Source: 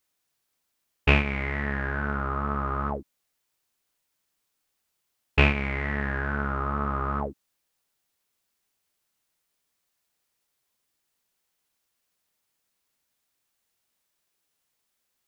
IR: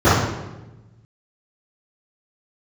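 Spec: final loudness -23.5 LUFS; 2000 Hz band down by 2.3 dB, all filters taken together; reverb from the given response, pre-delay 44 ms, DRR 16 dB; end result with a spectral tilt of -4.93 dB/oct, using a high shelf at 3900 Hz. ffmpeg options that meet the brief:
-filter_complex "[0:a]equalizer=f=2k:t=o:g=-5,highshelf=f=3.9k:g=6.5,asplit=2[a][b];[1:a]atrim=start_sample=2205,adelay=44[c];[b][c]afir=irnorm=-1:irlink=0,volume=-43.5dB[d];[a][d]amix=inputs=2:normalize=0,volume=3.5dB"

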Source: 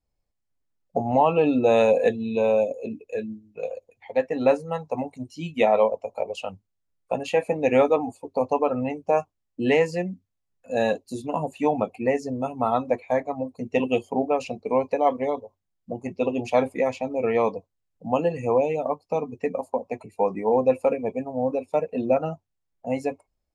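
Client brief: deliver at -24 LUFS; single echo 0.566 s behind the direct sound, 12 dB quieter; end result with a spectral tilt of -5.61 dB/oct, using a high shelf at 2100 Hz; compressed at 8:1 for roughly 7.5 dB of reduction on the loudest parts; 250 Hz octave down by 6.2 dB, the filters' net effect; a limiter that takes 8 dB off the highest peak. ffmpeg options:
-af "equalizer=f=250:t=o:g=-7,highshelf=f=2.1k:g=-4.5,acompressor=threshold=-23dB:ratio=8,alimiter=limit=-20.5dB:level=0:latency=1,aecho=1:1:566:0.251,volume=8.5dB"

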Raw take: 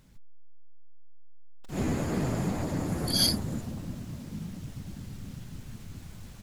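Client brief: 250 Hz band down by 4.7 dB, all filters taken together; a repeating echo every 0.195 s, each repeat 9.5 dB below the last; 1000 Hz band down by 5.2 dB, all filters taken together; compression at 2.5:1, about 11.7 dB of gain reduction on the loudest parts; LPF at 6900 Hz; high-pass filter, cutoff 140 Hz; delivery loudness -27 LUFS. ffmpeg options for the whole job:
-af "highpass=140,lowpass=6.9k,equalizer=f=250:t=o:g=-5,equalizer=f=1k:t=o:g=-7,acompressor=threshold=-40dB:ratio=2.5,aecho=1:1:195|390|585|780:0.335|0.111|0.0365|0.012,volume=15dB"

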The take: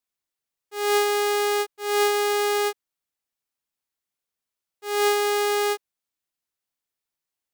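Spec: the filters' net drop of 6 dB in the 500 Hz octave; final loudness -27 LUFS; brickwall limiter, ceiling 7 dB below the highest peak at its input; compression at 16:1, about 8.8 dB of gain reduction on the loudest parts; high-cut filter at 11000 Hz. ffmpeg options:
-af "lowpass=11k,equalizer=f=500:t=o:g=-8,acompressor=threshold=-28dB:ratio=16,volume=11.5dB,alimiter=limit=-16.5dB:level=0:latency=1"

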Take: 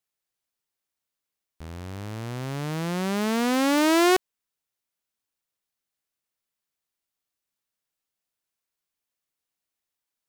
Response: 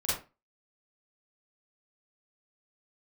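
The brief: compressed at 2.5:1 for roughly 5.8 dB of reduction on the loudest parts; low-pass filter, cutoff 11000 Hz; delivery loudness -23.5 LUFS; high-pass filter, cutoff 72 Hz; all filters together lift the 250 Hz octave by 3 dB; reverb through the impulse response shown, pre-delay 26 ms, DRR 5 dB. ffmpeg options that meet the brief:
-filter_complex "[0:a]highpass=72,lowpass=11k,equalizer=f=250:t=o:g=4,acompressor=threshold=-25dB:ratio=2.5,asplit=2[a][b];[1:a]atrim=start_sample=2205,adelay=26[c];[b][c]afir=irnorm=-1:irlink=0,volume=-12dB[d];[a][d]amix=inputs=2:normalize=0,volume=3dB"

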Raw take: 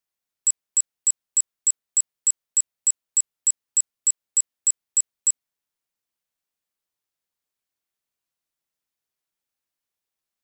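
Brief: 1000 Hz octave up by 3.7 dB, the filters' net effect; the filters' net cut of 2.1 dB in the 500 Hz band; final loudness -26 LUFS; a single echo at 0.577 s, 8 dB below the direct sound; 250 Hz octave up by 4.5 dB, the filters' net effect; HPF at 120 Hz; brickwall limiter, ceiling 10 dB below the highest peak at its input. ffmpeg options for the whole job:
-af "highpass=120,equalizer=f=250:t=o:g=8,equalizer=f=500:t=o:g=-7,equalizer=f=1k:t=o:g=6,alimiter=limit=-23dB:level=0:latency=1,aecho=1:1:577:0.398,volume=7dB"

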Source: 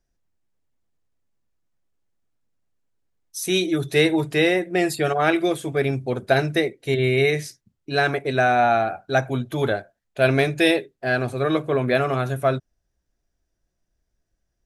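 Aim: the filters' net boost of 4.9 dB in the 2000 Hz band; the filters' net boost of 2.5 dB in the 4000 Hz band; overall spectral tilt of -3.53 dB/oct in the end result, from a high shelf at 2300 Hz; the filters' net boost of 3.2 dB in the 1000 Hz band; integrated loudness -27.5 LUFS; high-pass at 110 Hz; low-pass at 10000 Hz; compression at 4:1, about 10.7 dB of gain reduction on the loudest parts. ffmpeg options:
-af "highpass=110,lowpass=10k,equalizer=f=1k:t=o:g=5,equalizer=f=2k:t=o:g=7,highshelf=f=2.3k:g=-8,equalizer=f=4k:t=o:g=7,acompressor=threshold=-24dB:ratio=4"

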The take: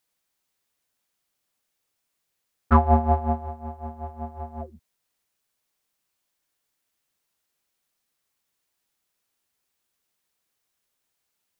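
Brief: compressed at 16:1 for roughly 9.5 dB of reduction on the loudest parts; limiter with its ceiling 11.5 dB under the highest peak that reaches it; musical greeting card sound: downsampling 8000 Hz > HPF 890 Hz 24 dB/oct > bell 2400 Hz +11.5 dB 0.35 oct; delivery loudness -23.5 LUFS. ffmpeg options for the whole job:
-af "acompressor=threshold=-21dB:ratio=16,alimiter=limit=-23dB:level=0:latency=1,aresample=8000,aresample=44100,highpass=f=890:w=0.5412,highpass=f=890:w=1.3066,equalizer=f=2.4k:t=o:w=0.35:g=11.5,volume=20.5dB"

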